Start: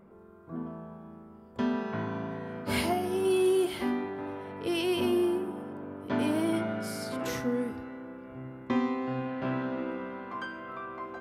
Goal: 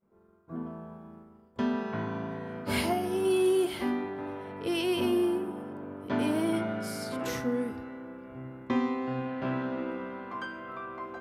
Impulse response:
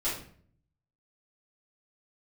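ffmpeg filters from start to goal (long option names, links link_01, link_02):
-af "agate=range=-33dB:threshold=-45dB:ratio=3:detection=peak"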